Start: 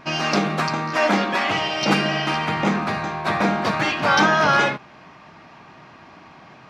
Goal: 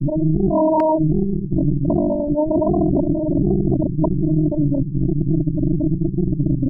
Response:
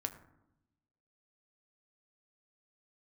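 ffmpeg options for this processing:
-filter_complex "[0:a]acontrast=82,asoftclip=type=tanh:threshold=0.266,acompressor=threshold=0.0282:ratio=8,asuperpass=centerf=150:order=12:qfactor=2.3,aecho=1:1:87|97:0.119|0.178,asplit=2[s0][s1];[1:a]atrim=start_sample=2205,lowshelf=f=68:g=10[s2];[s1][s2]afir=irnorm=-1:irlink=0,volume=1.26[s3];[s0][s3]amix=inputs=2:normalize=0,flanger=delay=8.9:depth=6.2:regen=-48:speed=0.3:shape=sinusoidal,aeval=exprs='0.0355*(cos(1*acos(clip(val(0)/0.0355,-1,1)))-cos(1*PI/2))+0.00891*(cos(2*acos(clip(val(0)/0.0355,-1,1)))-cos(2*PI/2))+0.000447*(cos(3*acos(clip(val(0)/0.0355,-1,1)))-cos(3*PI/2))+0.000282*(cos(5*acos(clip(val(0)/0.0355,-1,1)))-cos(5*PI/2))+0.01*(cos(6*acos(clip(val(0)/0.0355,-1,1)))-cos(6*PI/2))':c=same,afftfilt=real='re*lt(hypot(re,im),0.0891)':imag='im*lt(hypot(re,im),0.0891)':win_size=1024:overlap=0.75,alimiter=level_in=50.1:limit=0.891:release=50:level=0:latency=1,volume=0.473"

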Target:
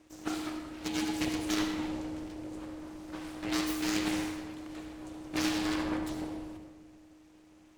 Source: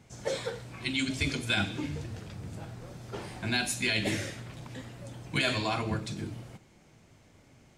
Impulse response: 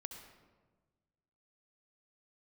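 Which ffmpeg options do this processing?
-filter_complex "[0:a]aeval=exprs='abs(val(0))':c=same,aeval=exprs='val(0)*sin(2*PI*310*n/s)':c=same[s0];[1:a]atrim=start_sample=2205[s1];[s0][s1]afir=irnorm=-1:irlink=0,volume=1.68"

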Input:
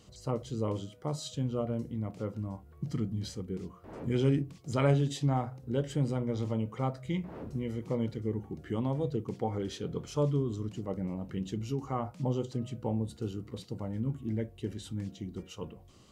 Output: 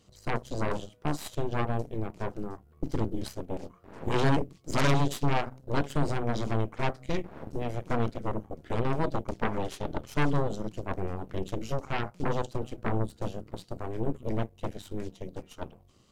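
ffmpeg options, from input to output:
-af "aeval=exprs='0.168*(cos(1*acos(clip(val(0)/0.168,-1,1)))-cos(1*PI/2))+0.0237*(cos(3*acos(clip(val(0)/0.168,-1,1)))-cos(3*PI/2))+0.0596*(cos(8*acos(clip(val(0)/0.168,-1,1)))-cos(8*PI/2))':c=same"

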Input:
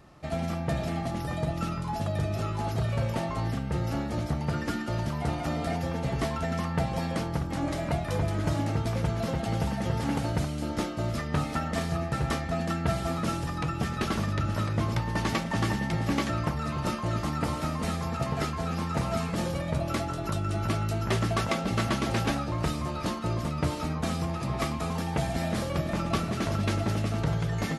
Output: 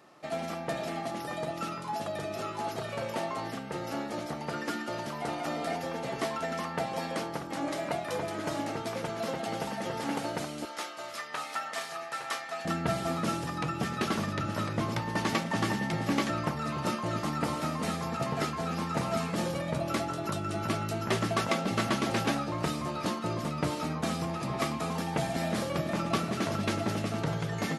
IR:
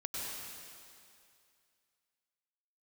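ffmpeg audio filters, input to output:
-af "asetnsamples=n=441:p=0,asendcmd='10.65 highpass f 860;12.65 highpass f 160',highpass=300"

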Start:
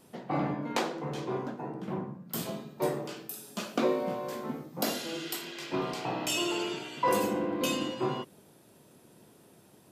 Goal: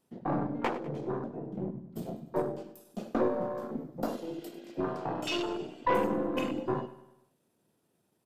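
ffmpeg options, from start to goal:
-af "afwtdn=0.02,aeval=exprs='0.168*(cos(1*acos(clip(val(0)/0.168,-1,1)))-cos(1*PI/2))+0.015*(cos(4*acos(clip(val(0)/0.168,-1,1)))-cos(4*PI/2))':c=same,atempo=1.2,aecho=1:1:99|198|297|396|495:0.168|0.0856|0.0437|0.0223|0.0114"

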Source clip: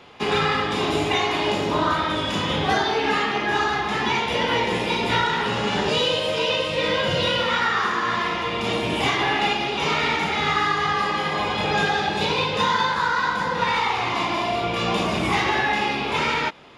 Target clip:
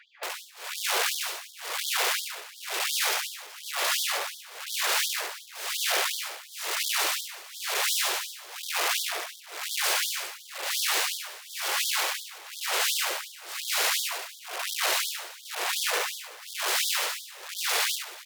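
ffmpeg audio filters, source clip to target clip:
-af "lowpass=8700,lowshelf=f=110:g=6,asetrate=33038,aresample=44100,atempo=1.33484,aeval=exprs='(mod(10.6*val(0)+1,2)-1)/10.6':c=same,tremolo=f=1.1:d=0.98,asetrate=40517,aresample=44100,aecho=1:1:70|124|189|377:0.447|0.133|0.112|0.119,afftfilt=real='re*gte(b*sr/1024,330*pow(3200/330,0.5+0.5*sin(2*PI*2.8*pts/sr)))':imag='im*gte(b*sr/1024,330*pow(3200/330,0.5+0.5*sin(2*PI*2.8*pts/sr)))':win_size=1024:overlap=0.75"

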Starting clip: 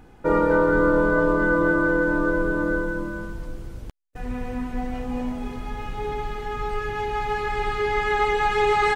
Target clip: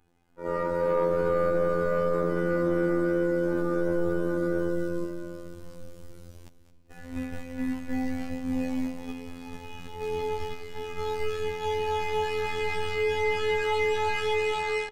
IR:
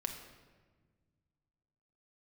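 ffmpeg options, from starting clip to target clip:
-filter_complex "[0:a]dynaudnorm=f=180:g=5:m=2.99,agate=range=0.398:threshold=0.126:ratio=16:detection=peak,asplit=2[s0][s1];[1:a]atrim=start_sample=2205,adelay=119[s2];[s1][s2]afir=irnorm=-1:irlink=0,volume=0.251[s3];[s0][s3]amix=inputs=2:normalize=0,adynamicequalizer=threshold=0.00224:dfrequency=5000:dqfactor=5.4:tfrequency=5000:tqfactor=5.4:attack=5:release=100:ratio=0.375:range=2:mode=boostabove:tftype=bell,atempo=0.6,afftfilt=real='hypot(re,im)*cos(PI*b)':imag='0':win_size=2048:overlap=0.75,asplit=2[s4][s5];[s5]adelay=390.7,volume=0.1,highshelf=f=4000:g=-8.79[s6];[s4][s6]amix=inputs=2:normalize=0,asoftclip=type=tanh:threshold=0.447,highshelf=f=3000:g=9.5,volume=0.422"

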